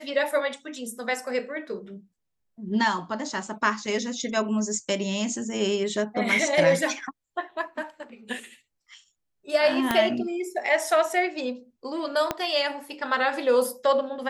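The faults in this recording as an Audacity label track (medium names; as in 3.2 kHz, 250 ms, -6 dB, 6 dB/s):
9.910000	9.910000	pop -8 dBFS
12.310000	12.310000	pop -10 dBFS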